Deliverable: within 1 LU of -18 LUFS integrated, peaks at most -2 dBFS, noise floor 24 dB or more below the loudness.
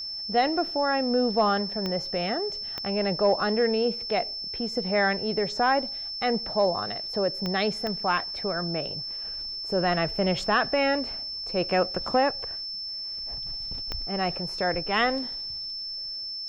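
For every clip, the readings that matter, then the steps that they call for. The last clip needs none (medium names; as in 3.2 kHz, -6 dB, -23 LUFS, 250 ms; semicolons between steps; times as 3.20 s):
clicks found 5; steady tone 5.3 kHz; tone level -32 dBFS; loudness -26.5 LUFS; peak level -11.5 dBFS; loudness target -18.0 LUFS
-> de-click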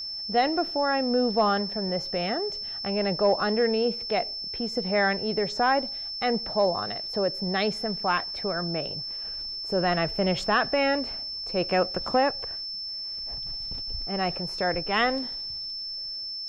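clicks found 0; steady tone 5.3 kHz; tone level -32 dBFS
-> band-stop 5.3 kHz, Q 30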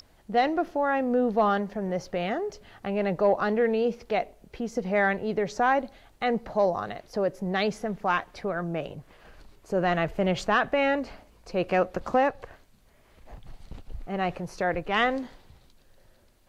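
steady tone not found; loudness -27.0 LUFS; peak level -12.5 dBFS; loudness target -18.0 LUFS
-> trim +9 dB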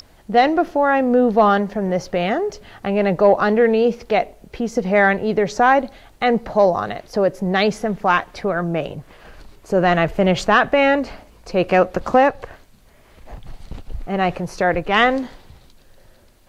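loudness -18.0 LUFS; peak level -3.5 dBFS; noise floor -50 dBFS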